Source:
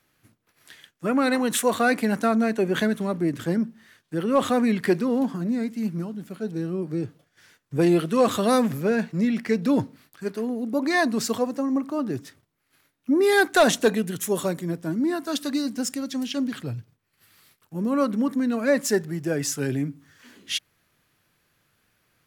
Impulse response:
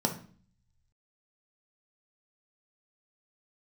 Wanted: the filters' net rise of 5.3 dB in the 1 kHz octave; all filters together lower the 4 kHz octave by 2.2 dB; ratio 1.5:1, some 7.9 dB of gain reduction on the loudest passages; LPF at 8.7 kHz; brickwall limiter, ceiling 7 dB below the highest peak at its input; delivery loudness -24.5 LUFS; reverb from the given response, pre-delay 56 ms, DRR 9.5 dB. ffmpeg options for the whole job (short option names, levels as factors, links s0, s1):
-filter_complex "[0:a]lowpass=8700,equalizer=f=1000:t=o:g=7.5,equalizer=f=4000:t=o:g=-3,acompressor=threshold=0.0224:ratio=1.5,alimiter=limit=0.1:level=0:latency=1,asplit=2[s0][s1];[1:a]atrim=start_sample=2205,adelay=56[s2];[s1][s2]afir=irnorm=-1:irlink=0,volume=0.133[s3];[s0][s3]amix=inputs=2:normalize=0,volume=1.5"